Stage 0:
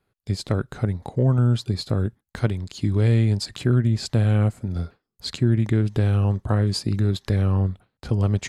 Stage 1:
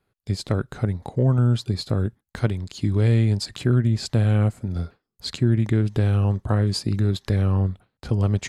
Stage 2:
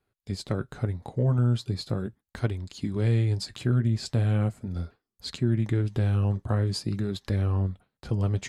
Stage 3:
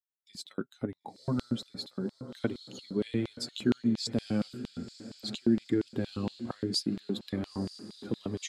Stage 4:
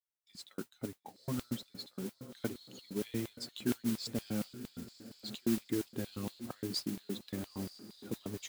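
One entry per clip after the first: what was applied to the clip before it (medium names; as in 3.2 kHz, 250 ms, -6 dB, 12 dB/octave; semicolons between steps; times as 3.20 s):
no audible change
flange 0.4 Hz, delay 2.5 ms, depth 7.1 ms, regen -59%; trim -1 dB
expander on every frequency bin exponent 1.5; echo that smears into a reverb 961 ms, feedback 48%, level -13 dB; LFO high-pass square 4.3 Hz 250–3600 Hz
modulation noise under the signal 13 dB; trim -6.5 dB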